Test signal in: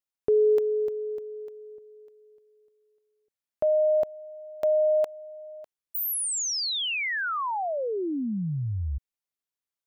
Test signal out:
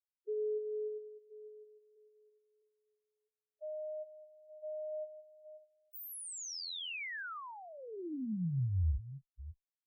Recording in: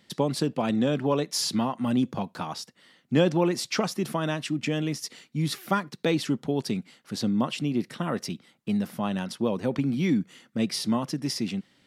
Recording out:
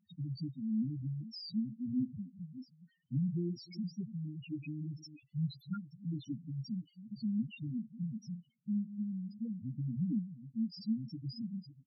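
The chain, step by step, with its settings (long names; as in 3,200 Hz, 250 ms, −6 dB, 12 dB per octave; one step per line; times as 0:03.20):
delay that plays each chunk backwards 328 ms, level −13 dB
guitar amp tone stack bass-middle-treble 6-0-2
double-tracking delay 23 ms −11 dB
spectral peaks only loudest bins 2
level +10.5 dB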